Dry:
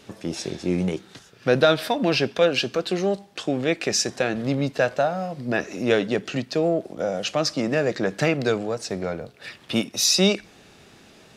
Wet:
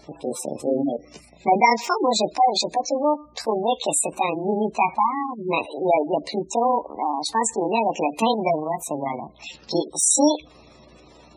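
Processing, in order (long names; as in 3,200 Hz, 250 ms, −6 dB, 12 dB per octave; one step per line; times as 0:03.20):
pitch shift by two crossfaded delay taps +7 semitones
mains hum 60 Hz, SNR 35 dB
gate on every frequency bin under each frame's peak −15 dB strong
level +3 dB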